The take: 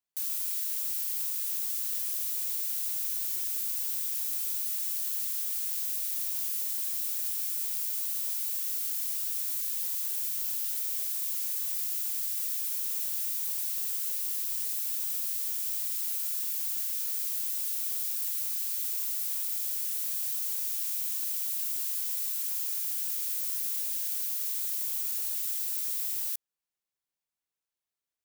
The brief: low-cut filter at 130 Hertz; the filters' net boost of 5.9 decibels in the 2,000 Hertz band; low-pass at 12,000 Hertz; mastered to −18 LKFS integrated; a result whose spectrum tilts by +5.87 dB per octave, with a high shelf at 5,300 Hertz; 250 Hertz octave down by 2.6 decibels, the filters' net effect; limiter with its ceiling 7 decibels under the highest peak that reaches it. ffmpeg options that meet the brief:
ffmpeg -i in.wav -af "highpass=130,lowpass=12000,equalizer=frequency=250:width_type=o:gain=-3.5,equalizer=frequency=2000:width_type=o:gain=6,highshelf=frequency=5300:gain=8,volume=14.5dB,alimiter=limit=-11.5dB:level=0:latency=1" out.wav

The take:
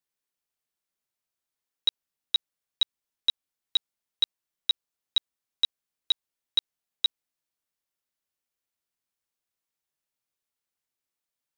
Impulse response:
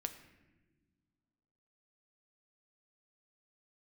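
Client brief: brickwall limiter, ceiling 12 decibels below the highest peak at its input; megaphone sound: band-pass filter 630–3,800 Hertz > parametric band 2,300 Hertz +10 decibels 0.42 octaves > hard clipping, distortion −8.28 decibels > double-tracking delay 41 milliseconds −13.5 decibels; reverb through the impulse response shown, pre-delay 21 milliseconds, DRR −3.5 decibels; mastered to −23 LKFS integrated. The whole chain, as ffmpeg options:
-filter_complex "[0:a]alimiter=level_in=3dB:limit=-24dB:level=0:latency=1,volume=-3dB,asplit=2[link_01][link_02];[1:a]atrim=start_sample=2205,adelay=21[link_03];[link_02][link_03]afir=irnorm=-1:irlink=0,volume=5dB[link_04];[link_01][link_04]amix=inputs=2:normalize=0,highpass=630,lowpass=3800,equalizer=frequency=2300:width_type=o:width=0.42:gain=10,asoftclip=type=hard:threshold=-35dB,asplit=2[link_05][link_06];[link_06]adelay=41,volume=-13.5dB[link_07];[link_05][link_07]amix=inputs=2:normalize=0,volume=20.5dB"

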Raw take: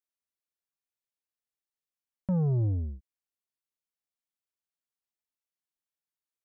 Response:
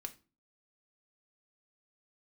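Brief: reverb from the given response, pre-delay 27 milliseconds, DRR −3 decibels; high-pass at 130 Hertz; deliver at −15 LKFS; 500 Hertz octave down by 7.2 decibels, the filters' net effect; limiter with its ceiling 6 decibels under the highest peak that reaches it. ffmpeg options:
-filter_complex "[0:a]highpass=130,equalizer=frequency=500:width_type=o:gain=-9,alimiter=level_in=5.5dB:limit=-24dB:level=0:latency=1,volume=-5.5dB,asplit=2[link_01][link_02];[1:a]atrim=start_sample=2205,adelay=27[link_03];[link_02][link_03]afir=irnorm=-1:irlink=0,volume=6.5dB[link_04];[link_01][link_04]amix=inputs=2:normalize=0,volume=19.5dB"

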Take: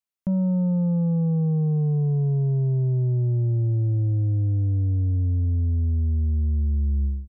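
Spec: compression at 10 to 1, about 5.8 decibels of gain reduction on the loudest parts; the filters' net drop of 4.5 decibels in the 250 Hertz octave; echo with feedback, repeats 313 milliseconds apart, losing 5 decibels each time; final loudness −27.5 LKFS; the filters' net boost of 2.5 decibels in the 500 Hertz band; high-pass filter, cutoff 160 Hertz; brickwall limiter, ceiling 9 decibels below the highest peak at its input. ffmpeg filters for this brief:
ffmpeg -i in.wav -af "highpass=160,equalizer=frequency=250:width_type=o:gain=-5,equalizer=frequency=500:width_type=o:gain=4.5,acompressor=threshold=-28dB:ratio=10,alimiter=level_in=6dB:limit=-24dB:level=0:latency=1,volume=-6dB,aecho=1:1:313|626|939|1252|1565|1878|2191:0.562|0.315|0.176|0.0988|0.0553|0.031|0.0173,volume=7.5dB" out.wav

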